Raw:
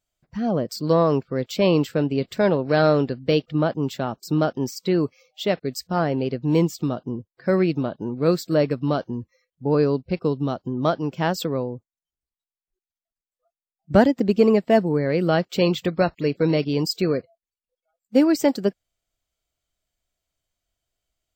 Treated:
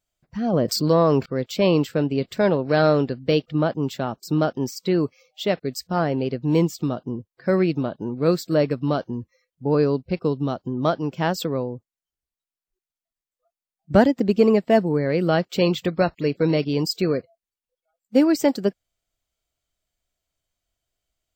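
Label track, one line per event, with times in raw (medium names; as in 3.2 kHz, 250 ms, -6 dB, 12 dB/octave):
0.530000	1.260000	level flattener amount 50%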